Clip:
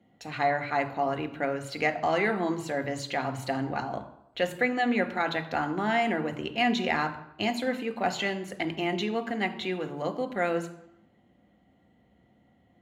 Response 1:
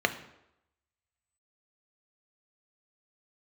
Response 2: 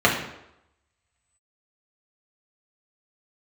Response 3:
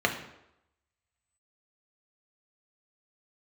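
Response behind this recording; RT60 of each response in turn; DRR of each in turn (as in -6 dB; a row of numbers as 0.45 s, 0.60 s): 1; 0.85 s, 0.85 s, 0.85 s; 7.0 dB, -4.0 dB, 2.0 dB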